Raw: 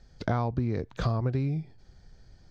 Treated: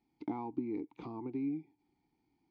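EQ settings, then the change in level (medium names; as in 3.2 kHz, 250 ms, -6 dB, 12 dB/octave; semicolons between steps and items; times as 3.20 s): bass shelf 160 Hz -7 dB; dynamic bell 390 Hz, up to +7 dB, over -44 dBFS, Q 0.81; vowel filter u; +1.0 dB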